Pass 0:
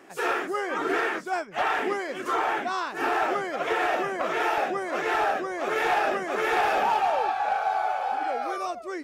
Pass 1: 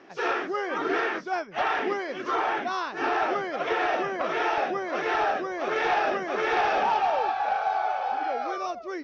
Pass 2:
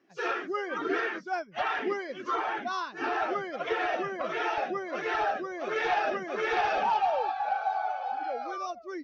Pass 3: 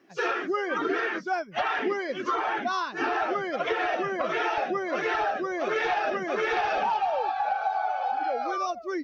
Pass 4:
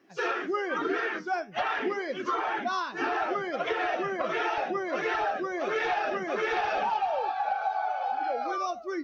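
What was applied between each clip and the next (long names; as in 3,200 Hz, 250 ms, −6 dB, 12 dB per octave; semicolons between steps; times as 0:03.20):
Chebyshev low-pass filter 5,900 Hz, order 5
spectral dynamics exaggerated over time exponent 1.5
downward compressor 4 to 1, threshold −32 dBFS, peak gain reduction 8.5 dB; level +7.5 dB
flanger 1.9 Hz, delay 9.4 ms, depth 2.7 ms, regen −77%; level +2.5 dB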